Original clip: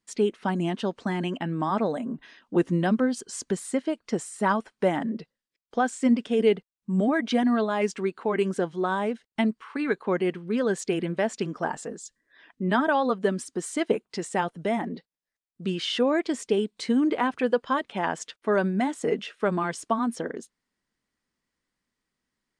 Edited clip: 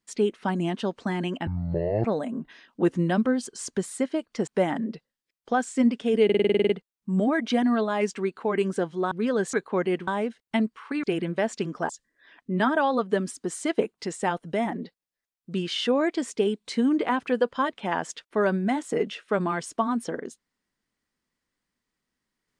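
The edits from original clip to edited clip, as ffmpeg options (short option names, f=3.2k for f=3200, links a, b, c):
-filter_complex "[0:a]asplit=18[a][b][c][d][e][f][g][h][i][j][k][l][m][n][o][p][q][r];[a]atrim=end=1.474[s];[b]atrim=start=1.47:end=1.78,asetpts=PTS-STARTPTS,asetrate=23814,aresample=44100[t];[c]atrim=start=1.776:end=4.212[u];[d]atrim=start=4.728:end=6.552[v];[e]atrim=start=6.498:end=6.552[w];[f]atrim=start=6.498:end=6.552[x];[g]atrim=start=6.498:end=6.552[y];[h]atrim=start=6.498:end=6.552[z];[i]atrim=start=6.498:end=6.552[aa];[j]atrim=start=6.498:end=6.552[ab];[k]atrim=start=6.498:end=6.552[ac];[l]atrim=start=6.498:end=6.552[ad];[m]atrim=start=6.498:end=8.922[ae];[n]atrim=start=10.418:end=10.842[af];[o]atrim=start=9.878:end=10.422[ag];[p]atrim=start=8.918:end=9.882[ah];[q]atrim=start=10.838:end=11.702[ai];[r]atrim=start=12.008[aj];[s][t]acrossfade=d=0.004:c1=hsin:c2=hsin[ak];[ak][u]acrossfade=d=0.004:c1=hsin:c2=hsin[al];[al][v]acrossfade=d=0.004:c1=hsin:c2=hsin[am];[am][w]acrossfade=d=0.004:c1=hsin:c2=hsin[an];[an][x]acrossfade=d=0.004:c1=hsin:c2=hsin[ao];[ao][y]acrossfade=d=0.004:c1=hsin:c2=hsin[ap];[ap][z]acrossfade=d=0.004:c1=hsin:c2=hsin[aq];[aq][aa]acrossfade=d=0.004:c1=hsin:c2=hsin[ar];[ar][ab]acrossfade=d=0.004:c1=hsin:c2=hsin[as];[as][ac]acrossfade=d=0.004:c1=hsin:c2=hsin[at];[at][ad]acrossfade=d=0.004:c1=hsin:c2=hsin[au];[au][ae]acrossfade=d=0.004:c1=hsin:c2=hsin[av];[av][af]acrossfade=d=0.004:c1=hsin:c2=hsin[aw];[aw][ag]acrossfade=d=0.004:c1=hsin:c2=hsin[ax];[ax][ah]acrossfade=d=0.004:c1=hsin:c2=hsin[ay];[ay][ai]acrossfade=d=0.004:c1=hsin:c2=hsin[az];[az][aj]acrossfade=d=0.004:c1=hsin:c2=hsin"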